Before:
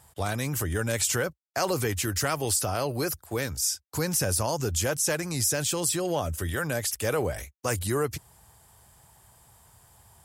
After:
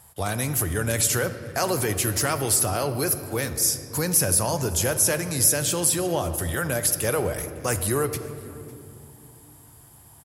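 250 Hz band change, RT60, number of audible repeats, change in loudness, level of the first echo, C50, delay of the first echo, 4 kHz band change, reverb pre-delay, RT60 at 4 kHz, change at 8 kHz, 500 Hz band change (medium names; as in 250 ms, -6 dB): +3.0 dB, 2.6 s, 1, +4.5 dB, -23.0 dB, 10.5 dB, 554 ms, +2.5 dB, 3 ms, 1.5 s, +6.0 dB, +2.5 dB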